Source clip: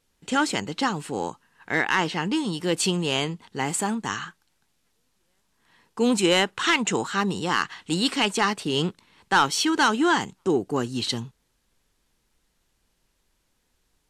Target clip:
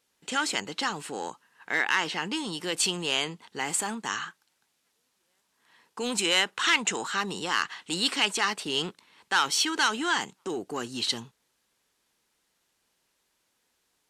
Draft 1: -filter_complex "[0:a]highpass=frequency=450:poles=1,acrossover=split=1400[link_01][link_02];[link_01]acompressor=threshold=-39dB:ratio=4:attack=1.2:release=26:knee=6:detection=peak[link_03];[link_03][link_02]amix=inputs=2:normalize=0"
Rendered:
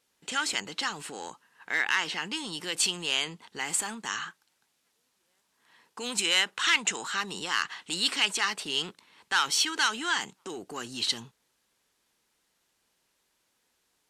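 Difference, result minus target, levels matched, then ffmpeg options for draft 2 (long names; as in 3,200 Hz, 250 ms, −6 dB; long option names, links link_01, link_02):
downward compressor: peak gain reduction +7 dB
-filter_complex "[0:a]highpass=frequency=450:poles=1,acrossover=split=1400[link_01][link_02];[link_01]acompressor=threshold=-29.5dB:ratio=4:attack=1.2:release=26:knee=6:detection=peak[link_03];[link_03][link_02]amix=inputs=2:normalize=0"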